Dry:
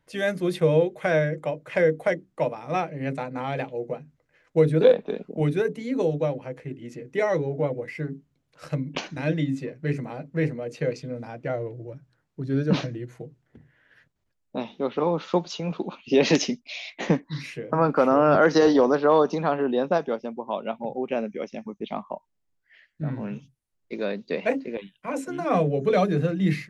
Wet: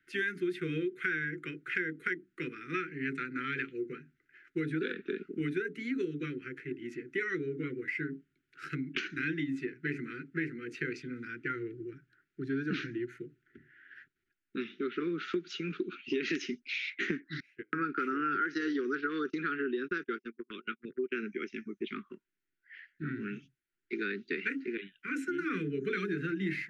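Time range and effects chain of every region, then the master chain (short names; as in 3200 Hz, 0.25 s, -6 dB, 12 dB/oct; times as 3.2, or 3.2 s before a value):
17.4–21.23 gate -32 dBFS, range -29 dB + bell 180 Hz -3.5 dB 0.93 oct
whole clip: Chebyshev band-stop 380–1400 Hz, order 4; three-band isolator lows -21 dB, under 370 Hz, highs -17 dB, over 2300 Hz; compressor 6:1, threshold -38 dBFS; gain +8 dB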